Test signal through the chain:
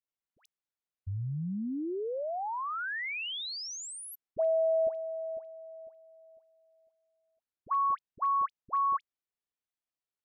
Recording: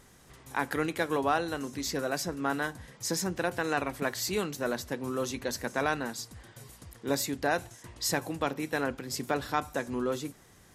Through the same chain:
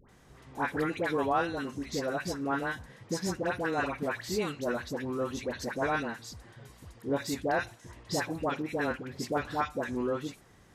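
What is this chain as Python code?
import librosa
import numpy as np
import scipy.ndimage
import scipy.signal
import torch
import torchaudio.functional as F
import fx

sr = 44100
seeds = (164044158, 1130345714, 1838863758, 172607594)

y = fx.lowpass(x, sr, hz=3200.0, slope=6)
y = fx.dispersion(y, sr, late='highs', ms=90.0, hz=1100.0)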